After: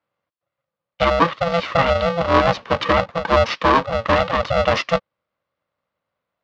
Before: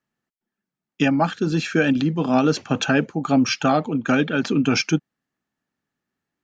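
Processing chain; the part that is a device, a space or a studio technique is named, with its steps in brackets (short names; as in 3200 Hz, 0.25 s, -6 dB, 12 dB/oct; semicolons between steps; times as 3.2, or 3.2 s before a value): ring modulator pedal into a guitar cabinet (polarity switched at an audio rate 340 Hz; speaker cabinet 77–4400 Hz, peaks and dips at 300 Hz +5 dB, 550 Hz +5 dB, 1100 Hz +9 dB)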